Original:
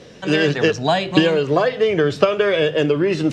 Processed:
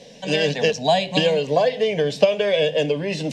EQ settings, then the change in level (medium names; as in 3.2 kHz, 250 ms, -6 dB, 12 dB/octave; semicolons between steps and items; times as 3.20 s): bass shelf 350 Hz -5.5 dB; static phaser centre 350 Hz, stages 6; +2.5 dB